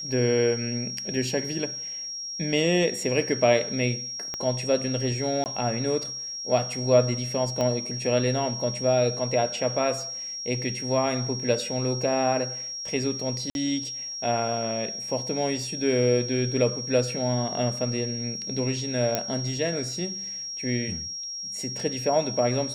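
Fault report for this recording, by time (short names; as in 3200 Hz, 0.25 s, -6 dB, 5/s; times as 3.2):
tone 5600 Hz -32 dBFS
4.34 pop -17 dBFS
5.44–5.46 gap 19 ms
7.61 pop -15 dBFS
13.5–13.55 gap 51 ms
19.15 pop -8 dBFS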